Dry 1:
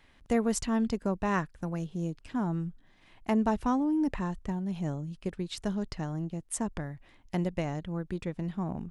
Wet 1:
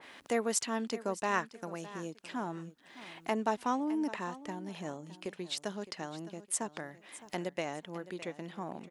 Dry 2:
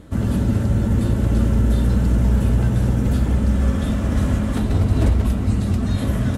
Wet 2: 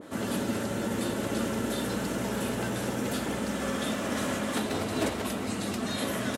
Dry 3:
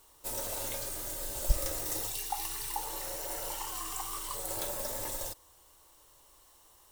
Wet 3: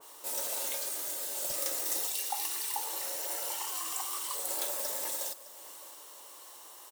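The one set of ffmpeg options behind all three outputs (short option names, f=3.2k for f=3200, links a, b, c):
-filter_complex "[0:a]highpass=350,acompressor=mode=upward:threshold=-38dB:ratio=2.5,asplit=2[a][b];[b]aecho=0:1:612|1224:0.158|0.038[c];[a][c]amix=inputs=2:normalize=0,adynamicequalizer=threshold=0.00355:dfrequency=1800:dqfactor=0.7:tfrequency=1800:tqfactor=0.7:attack=5:release=100:ratio=0.375:range=2:mode=boostabove:tftype=highshelf,volume=-1dB"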